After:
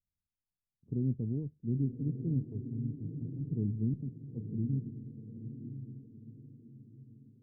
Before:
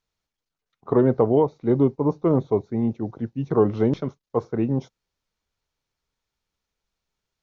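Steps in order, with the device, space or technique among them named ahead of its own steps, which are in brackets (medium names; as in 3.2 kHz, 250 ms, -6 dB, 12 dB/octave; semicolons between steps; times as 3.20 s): the neighbour's flat through the wall (low-pass 230 Hz 24 dB/octave; peaking EQ 85 Hz +4 dB 0.72 oct); 2.50–3.41 s: dynamic bell 240 Hz, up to -8 dB, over -39 dBFS, Q 0.95; echo that smears into a reverb 967 ms, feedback 40%, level -8 dB; trim -7.5 dB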